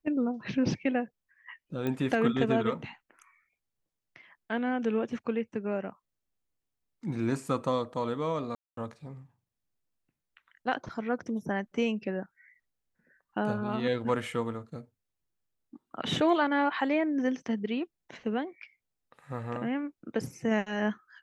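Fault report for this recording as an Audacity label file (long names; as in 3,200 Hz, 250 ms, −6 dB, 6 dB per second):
1.870000	1.870000	click −20 dBFS
8.550000	8.770000	drop-out 223 ms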